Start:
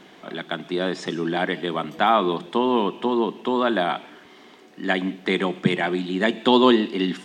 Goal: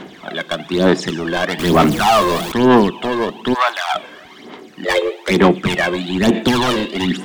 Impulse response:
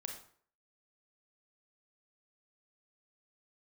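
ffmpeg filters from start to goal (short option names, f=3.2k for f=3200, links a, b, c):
-filter_complex "[0:a]asettb=1/sr,asplit=3[a][b][c];[a]atrim=end=1.594[d];[b]atrim=start=1.59:end=2.52,asetpts=PTS-STARTPTS,afade=t=in:d=0.004:c=qsin,afade=t=out:st=0.926:d=0.004:c=qsin,aeval=exprs='val(0)+0.5*0.0447*sgn(val(0))':c=same[e];[c]atrim=start=2.516[f];[d][e]acrossfade=d=0.004:c1=hsin:c2=qsin[g];[g][f]acrossfade=d=0.004:c1=qsin:c2=hsin,asplit=3[h][i][j];[h]afade=t=out:st=4.84:d=0.02[k];[i]afreqshift=160,afade=t=in:st=4.84:d=0.02,afade=t=out:st=5.3:d=0.02[l];[j]afade=t=in:st=5.3:d=0.02[m];[k][l][m]amix=inputs=3:normalize=0,volume=20.5dB,asoftclip=hard,volume=-20.5dB,asplit=3[n][o][p];[n]afade=t=out:st=3.53:d=0.02[q];[o]highpass=f=810:w=0.5412,highpass=f=810:w=1.3066,afade=t=in:st=3.53:d=0.02,afade=t=out:st=3.94:d=0.02[r];[p]afade=t=in:st=3.94:d=0.02[s];[q][r][s]amix=inputs=3:normalize=0,aphaser=in_gain=1:out_gain=1:delay=1.9:decay=0.63:speed=1.1:type=sinusoidal,volume=7dB"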